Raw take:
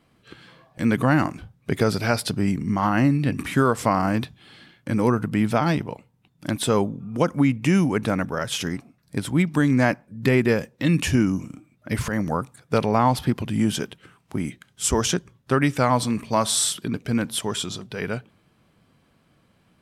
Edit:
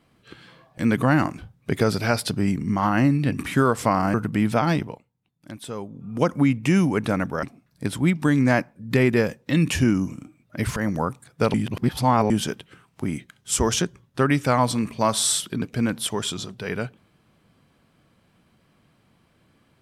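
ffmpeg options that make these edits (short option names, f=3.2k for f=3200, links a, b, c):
-filter_complex "[0:a]asplit=7[a][b][c][d][e][f][g];[a]atrim=end=4.142[h];[b]atrim=start=5.128:end=6.02,asetpts=PTS-STARTPTS,afade=t=out:st=0.682:d=0.21:silence=0.237137[i];[c]atrim=start=6.02:end=6.88,asetpts=PTS-STARTPTS,volume=-12.5dB[j];[d]atrim=start=6.88:end=8.422,asetpts=PTS-STARTPTS,afade=t=in:d=0.21:silence=0.237137[k];[e]atrim=start=8.748:end=12.862[l];[f]atrim=start=12.858:end=13.622,asetpts=PTS-STARTPTS,areverse[m];[g]atrim=start=13.618[n];[i][j][k]concat=n=3:v=0:a=1[o];[h][o]acrossfade=d=0.004:c1=hsin:c2=hsin[p];[p][l]acrossfade=d=0.004:c1=hsin:c2=hsin[q];[q][m]acrossfade=d=0.004:c1=hsin:c2=hsin[r];[r][n]acrossfade=d=0.004:c1=hsin:c2=hsin"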